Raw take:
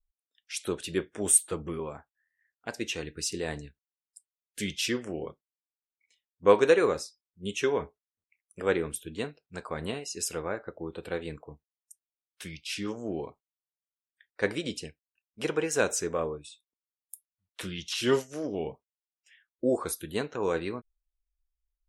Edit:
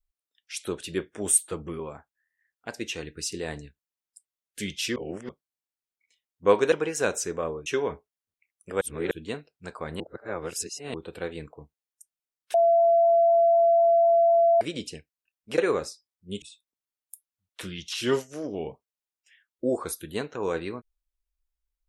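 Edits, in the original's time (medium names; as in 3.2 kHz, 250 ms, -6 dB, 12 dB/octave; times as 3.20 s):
4.96–5.29 s: reverse
6.72–7.56 s: swap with 15.48–16.42 s
8.71–9.01 s: reverse
9.90–10.84 s: reverse
12.44–14.51 s: bleep 676 Hz -16 dBFS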